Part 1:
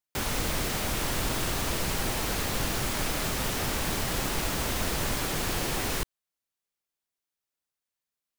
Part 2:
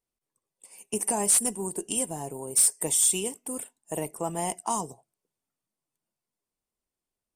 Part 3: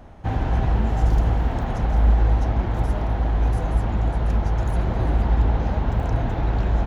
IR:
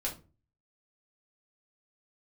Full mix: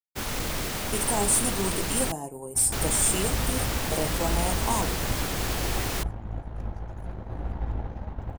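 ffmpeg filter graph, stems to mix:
-filter_complex "[0:a]asoftclip=type=tanh:threshold=-21.5dB,volume=1dB,asplit=3[link_01][link_02][link_03];[link_01]atrim=end=2.12,asetpts=PTS-STARTPTS,afade=type=out:start_time=2.116:duration=0.004:curve=hsin[link_04];[link_02]atrim=start=2.12:end=2.72,asetpts=PTS-STARTPTS,volume=0[link_05];[link_03]atrim=start=2.72,asetpts=PTS-STARTPTS,afade=type=in:duration=0.004:curve=hsin[link_06];[link_04][link_05][link_06]concat=n=3:v=0:a=1[link_07];[1:a]volume=1dB,asplit=2[link_08][link_09];[link_09]volume=-10.5dB[link_10];[2:a]aeval=exprs='0.501*(cos(1*acos(clip(val(0)/0.501,-1,1)))-cos(1*PI/2))+0.0631*(cos(3*acos(clip(val(0)/0.501,-1,1)))-cos(3*PI/2))+0.0141*(cos(8*acos(clip(val(0)/0.501,-1,1)))-cos(8*PI/2))':channel_layout=same,adelay=2300,volume=-8.5dB,asplit=2[link_11][link_12];[link_12]volume=-19dB[link_13];[link_08][link_11]amix=inputs=2:normalize=0,equalizer=frequency=3900:width=0.69:gain=-5.5,alimiter=limit=-19dB:level=0:latency=1,volume=0dB[link_14];[3:a]atrim=start_sample=2205[link_15];[link_10][link_13]amix=inputs=2:normalize=0[link_16];[link_16][link_15]afir=irnorm=-1:irlink=0[link_17];[link_07][link_14][link_17]amix=inputs=3:normalize=0,agate=range=-33dB:threshold=-28dB:ratio=3:detection=peak"

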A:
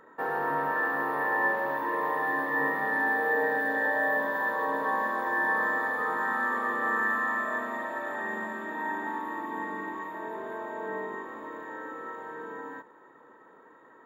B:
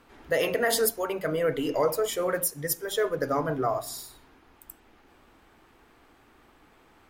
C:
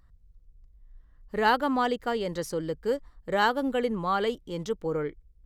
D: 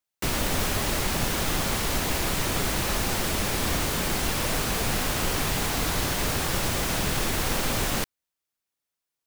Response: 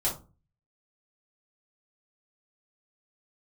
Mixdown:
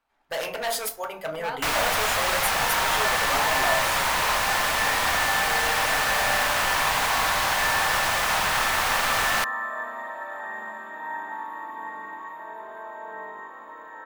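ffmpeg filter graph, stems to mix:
-filter_complex "[0:a]adelay=2250,volume=-1.5dB[link_01];[1:a]aeval=exprs='0.0891*(abs(mod(val(0)/0.0891+3,4)-2)-1)':channel_layout=same,volume=-2.5dB,asplit=2[link_02][link_03];[link_03]volume=-12.5dB[link_04];[2:a]volume=-15.5dB,asplit=2[link_05][link_06];[link_06]volume=-9dB[link_07];[3:a]equalizer=frequency=1600:width_type=o:width=2.7:gain=8,adelay=1400,volume=-1dB[link_08];[4:a]atrim=start_sample=2205[link_09];[link_04][link_07]amix=inputs=2:normalize=0[link_10];[link_10][link_09]afir=irnorm=-1:irlink=0[link_11];[link_01][link_02][link_05][link_08][link_11]amix=inputs=5:normalize=0,agate=range=-18dB:threshold=-44dB:ratio=16:detection=peak,lowshelf=frequency=520:width_type=q:width=1.5:gain=-8.5"

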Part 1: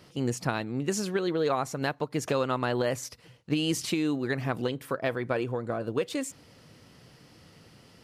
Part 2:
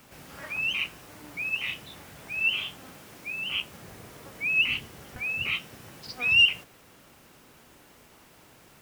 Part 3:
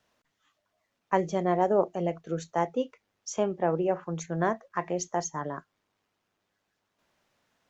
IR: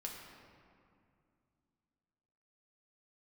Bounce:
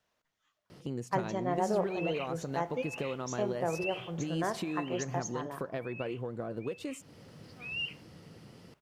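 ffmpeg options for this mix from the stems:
-filter_complex "[0:a]equalizer=frequency=240:width_type=o:width=2.5:gain=10.5,acompressor=threshold=-33dB:ratio=2.5,adelay=700,volume=-3.5dB[link_01];[1:a]lowpass=frequency=2200:poles=1,adelay=1400,volume=-3dB,afade=type=out:start_time=4.71:duration=0.5:silence=0.298538,afade=type=in:start_time=7.02:duration=0.5:silence=0.421697[link_02];[2:a]volume=-7.5dB,asplit=2[link_03][link_04];[link_04]volume=-8dB[link_05];[3:a]atrim=start_sample=2205[link_06];[link_05][link_06]afir=irnorm=-1:irlink=0[link_07];[link_01][link_02][link_03][link_07]amix=inputs=4:normalize=0,equalizer=frequency=260:width=2:gain=-5"

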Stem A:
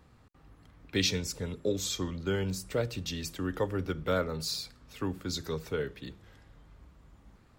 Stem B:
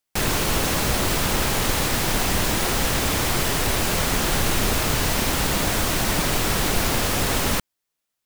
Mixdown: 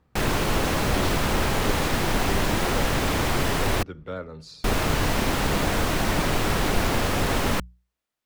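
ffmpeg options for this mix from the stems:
ffmpeg -i stem1.wav -i stem2.wav -filter_complex "[0:a]lowpass=9100,volume=-4.5dB[link_01];[1:a]bandreject=frequency=60:width_type=h:width=6,bandreject=frequency=120:width_type=h:width=6,bandreject=frequency=180:width_type=h:width=6,volume=0.5dB,asplit=3[link_02][link_03][link_04];[link_02]atrim=end=3.83,asetpts=PTS-STARTPTS,afade=type=out:start_time=3.826:duration=0.004:curve=hsin[link_05];[link_03]atrim=start=3.83:end=4.64,asetpts=PTS-STARTPTS,volume=0[link_06];[link_04]atrim=start=4.64,asetpts=PTS-STARTPTS,afade=type=in:duration=0.004:curve=hsin[link_07];[link_05][link_06][link_07]concat=n=3:v=0:a=1[link_08];[link_01][link_08]amix=inputs=2:normalize=0,highshelf=frequency=3900:gain=-10.5" out.wav

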